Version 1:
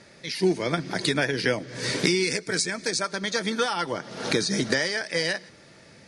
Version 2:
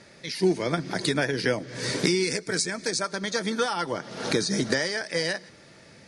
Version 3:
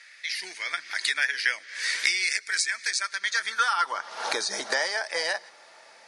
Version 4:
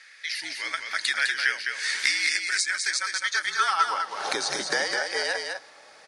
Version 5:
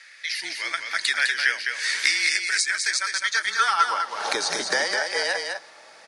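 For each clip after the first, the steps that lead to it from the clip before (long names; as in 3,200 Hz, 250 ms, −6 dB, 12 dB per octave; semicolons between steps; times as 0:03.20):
dynamic equaliser 2,700 Hz, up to −4 dB, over −37 dBFS, Q 1.1
high-pass filter sweep 1,900 Hz → 810 Hz, 0:03.21–0:04.36
frequency shifter −54 Hz; single-tap delay 206 ms −5 dB
frequency shifter +26 Hz; level +2.5 dB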